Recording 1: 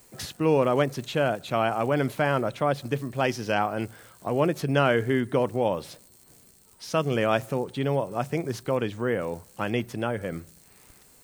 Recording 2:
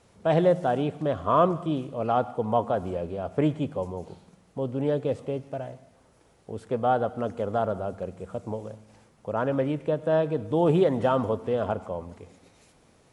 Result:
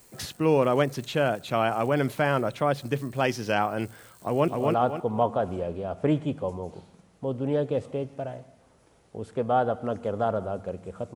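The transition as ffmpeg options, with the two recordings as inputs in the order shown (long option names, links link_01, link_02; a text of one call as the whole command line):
ffmpeg -i cue0.wav -i cue1.wav -filter_complex "[0:a]apad=whole_dur=11.15,atrim=end=11.15,atrim=end=4.482[link_01];[1:a]atrim=start=1.818:end=8.49[link_02];[link_01][link_02]acrossfade=duration=0.004:curve1=hsin:curve2=hsin,asplit=2[link_03][link_04];[link_04]afade=type=in:start_time=4.21:duration=0.01,afade=type=out:start_time=4.48:duration=0.01,aecho=0:1:260|520|780|1040|1300:0.794328|0.278015|0.0973052|0.0340568|0.0119199[link_05];[link_03][link_05]amix=inputs=2:normalize=0" out.wav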